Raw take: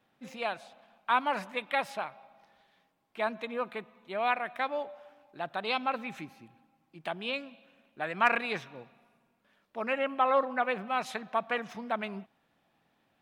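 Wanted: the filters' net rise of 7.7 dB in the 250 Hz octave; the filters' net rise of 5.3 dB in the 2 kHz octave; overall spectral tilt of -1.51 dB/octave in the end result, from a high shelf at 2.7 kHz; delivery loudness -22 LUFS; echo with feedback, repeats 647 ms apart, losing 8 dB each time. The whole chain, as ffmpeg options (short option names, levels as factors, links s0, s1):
-af "equalizer=f=250:t=o:g=8.5,equalizer=f=2000:t=o:g=5,highshelf=f=2700:g=4,aecho=1:1:647|1294|1941|2588|3235:0.398|0.159|0.0637|0.0255|0.0102,volume=2.24"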